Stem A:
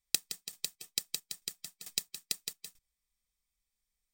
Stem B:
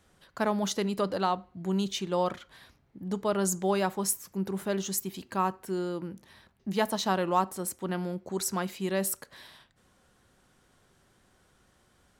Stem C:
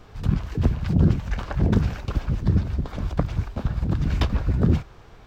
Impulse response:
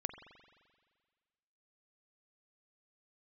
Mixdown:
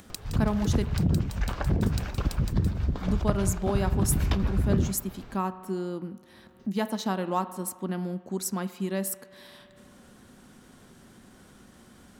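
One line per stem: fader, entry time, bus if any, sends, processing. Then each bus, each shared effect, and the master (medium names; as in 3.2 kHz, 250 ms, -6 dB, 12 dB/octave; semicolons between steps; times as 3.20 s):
-2.5 dB, 0.00 s, bus A, no send, compression 1.5:1, threshold -44 dBFS, peak gain reduction 8 dB
0.0 dB, 0.00 s, muted 0.84–2.64 s, bus A, send -6 dB, treble shelf 9.8 kHz +4 dB; upward expansion 1.5:1, over -39 dBFS
-3.5 dB, 0.10 s, no bus, send -6.5 dB, compression, threshold -20 dBFS, peak gain reduction 8 dB
bus A: 0.0 dB, peaking EQ 230 Hz +13.5 dB 1 oct; compression, threshold -29 dBFS, peak gain reduction 11 dB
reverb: on, RT60 1.7 s, pre-delay 43 ms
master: upward compressor, threshold -39 dBFS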